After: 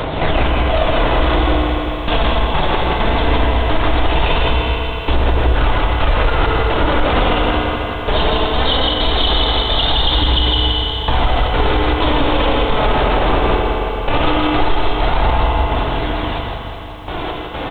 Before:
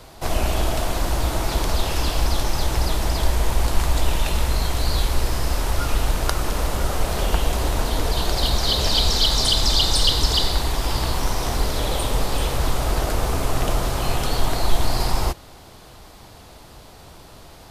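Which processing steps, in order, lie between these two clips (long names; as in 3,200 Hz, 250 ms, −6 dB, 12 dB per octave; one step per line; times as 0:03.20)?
low-shelf EQ 130 Hz −7.5 dB
downward compressor 5 to 1, threshold −31 dBFS, peak gain reduction 15 dB
gate pattern "xx.xxx...x.x." 65 BPM −24 dB
flanger 0.19 Hz, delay 0 ms, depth 5.4 ms, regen +53%
single-tap delay 161 ms −4 dB
feedback delay network reverb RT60 3.2 s, high-frequency decay 0.9×, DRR 1.5 dB
downsampling to 8,000 Hz
boost into a limiter +31 dB
feedback echo at a low word length 373 ms, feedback 55%, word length 7 bits, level −12 dB
level −5 dB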